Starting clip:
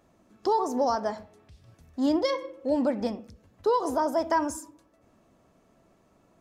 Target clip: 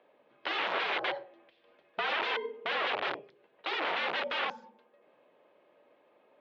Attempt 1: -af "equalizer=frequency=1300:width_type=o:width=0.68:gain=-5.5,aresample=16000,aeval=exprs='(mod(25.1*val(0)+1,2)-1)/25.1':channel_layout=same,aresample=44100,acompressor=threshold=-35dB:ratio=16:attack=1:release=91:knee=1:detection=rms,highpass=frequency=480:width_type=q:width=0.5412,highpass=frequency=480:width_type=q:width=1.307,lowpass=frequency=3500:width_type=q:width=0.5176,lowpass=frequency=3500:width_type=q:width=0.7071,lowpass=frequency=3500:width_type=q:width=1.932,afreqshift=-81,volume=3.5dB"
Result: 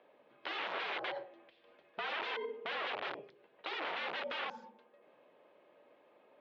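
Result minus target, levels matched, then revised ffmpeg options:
downward compressor: peak gain reduction +8 dB
-af "equalizer=frequency=1300:width_type=o:width=0.68:gain=-5.5,aresample=16000,aeval=exprs='(mod(25.1*val(0)+1,2)-1)/25.1':channel_layout=same,aresample=44100,highpass=frequency=480:width_type=q:width=0.5412,highpass=frequency=480:width_type=q:width=1.307,lowpass=frequency=3500:width_type=q:width=0.5176,lowpass=frequency=3500:width_type=q:width=0.7071,lowpass=frequency=3500:width_type=q:width=1.932,afreqshift=-81,volume=3.5dB"

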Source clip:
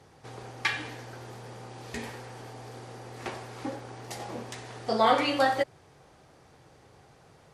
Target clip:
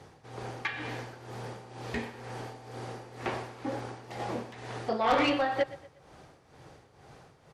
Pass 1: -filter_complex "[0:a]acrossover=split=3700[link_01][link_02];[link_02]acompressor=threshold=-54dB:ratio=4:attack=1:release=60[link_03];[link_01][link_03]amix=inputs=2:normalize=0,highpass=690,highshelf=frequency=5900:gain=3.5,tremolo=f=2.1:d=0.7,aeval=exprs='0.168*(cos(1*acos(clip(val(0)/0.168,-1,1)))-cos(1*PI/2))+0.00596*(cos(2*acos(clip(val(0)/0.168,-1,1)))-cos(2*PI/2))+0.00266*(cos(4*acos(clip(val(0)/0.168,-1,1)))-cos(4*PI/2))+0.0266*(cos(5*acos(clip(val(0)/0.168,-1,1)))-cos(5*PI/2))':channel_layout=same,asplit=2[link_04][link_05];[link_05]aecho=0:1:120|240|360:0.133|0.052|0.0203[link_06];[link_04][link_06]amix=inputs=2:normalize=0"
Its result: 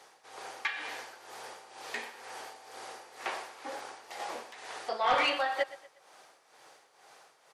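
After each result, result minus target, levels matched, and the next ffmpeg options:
8,000 Hz band +5.5 dB; 500 Hz band −3.5 dB
-filter_complex "[0:a]acrossover=split=3700[link_01][link_02];[link_02]acompressor=threshold=-54dB:ratio=4:attack=1:release=60[link_03];[link_01][link_03]amix=inputs=2:normalize=0,highpass=690,highshelf=frequency=5900:gain=-4.5,tremolo=f=2.1:d=0.7,aeval=exprs='0.168*(cos(1*acos(clip(val(0)/0.168,-1,1)))-cos(1*PI/2))+0.00596*(cos(2*acos(clip(val(0)/0.168,-1,1)))-cos(2*PI/2))+0.00266*(cos(4*acos(clip(val(0)/0.168,-1,1)))-cos(4*PI/2))+0.0266*(cos(5*acos(clip(val(0)/0.168,-1,1)))-cos(5*PI/2))':channel_layout=same,asplit=2[link_04][link_05];[link_05]aecho=0:1:120|240|360:0.133|0.052|0.0203[link_06];[link_04][link_06]amix=inputs=2:normalize=0"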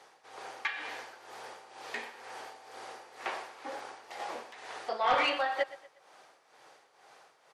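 500 Hz band −3.0 dB
-filter_complex "[0:a]acrossover=split=3700[link_01][link_02];[link_02]acompressor=threshold=-54dB:ratio=4:attack=1:release=60[link_03];[link_01][link_03]amix=inputs=2:normalize=0,highshelf=frequency=5900:gain=-4.5,tremolo=f=2.1:d=0.7,aeval=exprs='0.168*(cos(1*acos(clip(val(0)/0.168,-1,1)))-cos(1*PI/2))+0.00596*(cos(2*acos(clip(val(0)/0.168,-1,1)))-cos(2*PI/2))+0.00266*(cos(4*acos(clip(val(0)/0.168,-1,1)))-cos(4*PI/2))+0.0266*(cos(5*acos(clip(val(0)/0.168,-1,1)))-cos(5*PI/2))':channel_layout=same,asplit=2[link_04][link_05];[link_05]aecho=0:1:120|240|360:0.133|0.052|0.0203[link_06];[link_04][link_06]amix=inputs=2:normalize=0"

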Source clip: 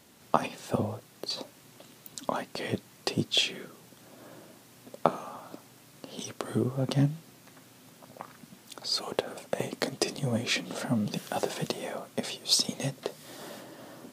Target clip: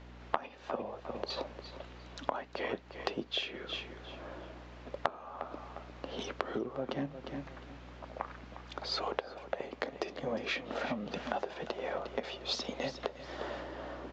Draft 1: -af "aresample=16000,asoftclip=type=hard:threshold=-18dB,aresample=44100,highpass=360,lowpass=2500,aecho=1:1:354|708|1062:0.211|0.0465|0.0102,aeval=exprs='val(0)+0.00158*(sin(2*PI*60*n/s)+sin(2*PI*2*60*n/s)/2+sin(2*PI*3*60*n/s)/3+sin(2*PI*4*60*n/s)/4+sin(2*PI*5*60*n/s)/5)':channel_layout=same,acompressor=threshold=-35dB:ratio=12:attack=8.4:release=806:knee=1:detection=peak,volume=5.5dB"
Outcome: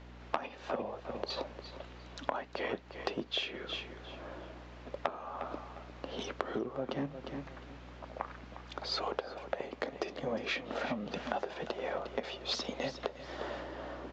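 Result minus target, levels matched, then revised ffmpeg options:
hard clipping: distortion +8 dB
-af "aresample=16000,asoftclip=type=hard:threshold=-10dB,aresample=44100,highpass=360,lowpass=2500,aecho=1:1:354|708|1062:0.211|0.0465|0.0102,aeval=exprs='val(0)+0.00158*(sin(2*PI*60*n/s)+sin(2*PI*2*60*n/s)/2+sin(2*PI*3*60*n/s)/3+sin(2*PI*4*60*n/s)/4+sin(2*PI*5*60*n/s)/5)':channel_layout=same,acompressor=threshold=-35dB:ratio=12:attack=8.4:release=806:knee=1:detection=peak,volume=5.5dB"

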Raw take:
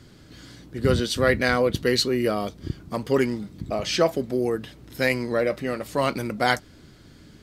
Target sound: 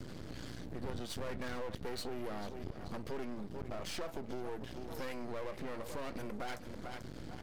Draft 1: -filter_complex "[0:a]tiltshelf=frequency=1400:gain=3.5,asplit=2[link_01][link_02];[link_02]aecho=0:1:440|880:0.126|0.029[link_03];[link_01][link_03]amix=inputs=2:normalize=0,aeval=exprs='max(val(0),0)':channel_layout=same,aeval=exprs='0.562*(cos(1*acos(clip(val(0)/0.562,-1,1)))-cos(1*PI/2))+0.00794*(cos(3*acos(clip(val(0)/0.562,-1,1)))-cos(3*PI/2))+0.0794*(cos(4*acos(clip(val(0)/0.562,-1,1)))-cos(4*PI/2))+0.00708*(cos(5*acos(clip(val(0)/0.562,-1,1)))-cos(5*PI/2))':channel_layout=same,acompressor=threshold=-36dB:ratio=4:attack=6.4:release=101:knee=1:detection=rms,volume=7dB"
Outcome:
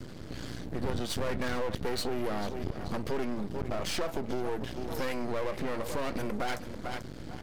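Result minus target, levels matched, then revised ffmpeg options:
downward compressor: peak gain reduction −8.5 dB
-filter_complex "[0:a]tiltshelf=frequency=1400:gain=3.5,asplit=2[link_01][link_02];[link_02]aecho=0:1:440|880:0.126|0.029[link_03];[link_01][link_03]amix=inputs=2:normalize=0,aeval=exprs='max(val(0),0)':channel_layout=same,aeval=exprs='0.562*(cos(1*acos(clip(val(0)/0.562,-1,1)))-cos(1*PI/2))+0.00794*(cos(3*acos(clip(val(0)/0.562,-1,1)))-cos(3*PI/2))+0.0794*(cos(4*acos(clip(val(0)/0.562,-1,1)))-cos(4*PI/2))+0.00708*(cos(5*acos(clip(val(0)/0.562,-1,1)))-cos(5*PI/2))':channel_layout=same,acompressor=threshold=-47.5dB:ratio=4:attack=6.4:release=101:knee=1:detection=rms,volume=7dB"

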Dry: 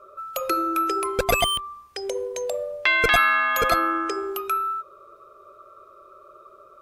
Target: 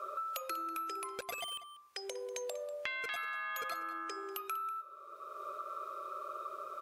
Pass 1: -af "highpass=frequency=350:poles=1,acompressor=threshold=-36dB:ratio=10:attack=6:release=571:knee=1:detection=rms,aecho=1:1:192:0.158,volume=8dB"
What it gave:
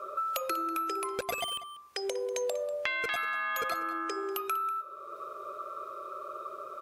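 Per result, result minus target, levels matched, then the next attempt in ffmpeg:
downward compressor: peak gain reduction −5.5 dB; 250 Hz band +4.0 dB
-af "highpass=frequency=350:poles=1,acompressor=threshold=-43.5dB:ratio=10:attack=6:release=571:knee=1:detection=rms,aecho=1:1:192:0.158,volume=8dB"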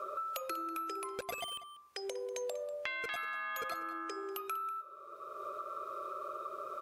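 250 Hz band +4.0 dB
-af "highpass=frequency=920:poles=1,acompressor=threshold=-43.5dB:ratio=10:attack=6:release=571:knee=1:detection=rms,aecho=1:1:192:0.158,volume=8dB"

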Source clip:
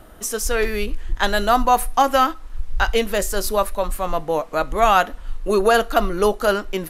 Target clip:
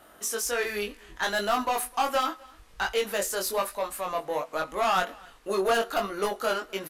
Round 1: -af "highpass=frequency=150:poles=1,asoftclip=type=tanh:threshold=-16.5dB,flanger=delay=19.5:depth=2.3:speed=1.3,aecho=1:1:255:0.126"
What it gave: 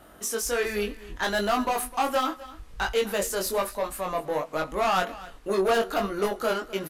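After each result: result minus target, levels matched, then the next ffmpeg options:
125 Hz band +5.5 dB; echo-to-direct +7.5 dB
-af "highpass=frequency=540:poles=1,asoftclip=type=tanh:threshold=-16.5dB,flanger=delay=19.5:depth=2.3:speed=1.3,aecho=1:1:255:0.126"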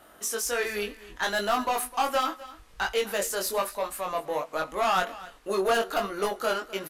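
echo-to-direct +7.5 dB
-af "highpass=frequency=540:poles=1,asoftclip=type=tanh:threshold=-16.5dB,flanger=delay=19.5:depth=2.3:speed=1.3,aecho=1:1:255:0.0531"

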